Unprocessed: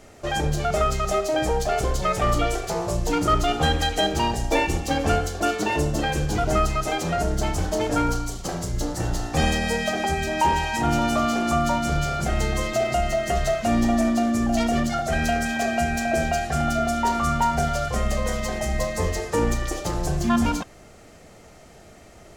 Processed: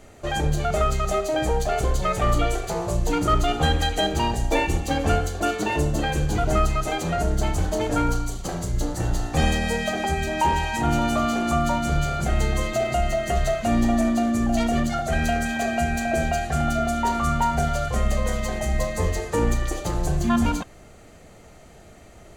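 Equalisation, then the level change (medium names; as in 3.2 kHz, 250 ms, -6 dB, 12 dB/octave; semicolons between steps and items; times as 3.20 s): bass shelf 120 Hz +4.5 dB; band-stop 5.3 kHz, Q 7.2; -1.0 dB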